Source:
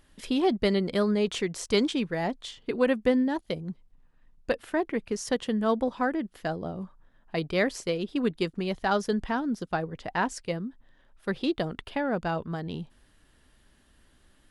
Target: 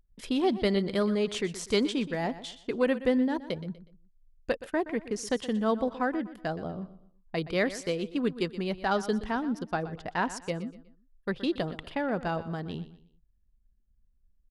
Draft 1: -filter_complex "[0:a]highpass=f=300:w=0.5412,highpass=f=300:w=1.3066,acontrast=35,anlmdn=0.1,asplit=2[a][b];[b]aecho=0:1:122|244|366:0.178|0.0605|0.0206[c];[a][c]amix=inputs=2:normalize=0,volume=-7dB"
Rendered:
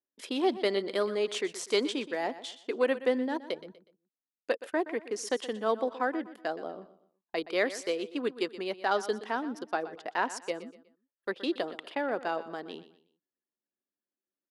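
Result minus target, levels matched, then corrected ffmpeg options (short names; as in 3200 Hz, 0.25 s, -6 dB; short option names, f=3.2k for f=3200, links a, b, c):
250 Hz band -4.0 dB
-filter_complex "[0:a]acontrast=35,anlmdn=0.1,asplit=2[a][b];[b]aecho=0:1:122|244|366:0.178|0.0605|0.0206[c];[a][c]amix=inputs=2:normalize=0,volume=-7dB"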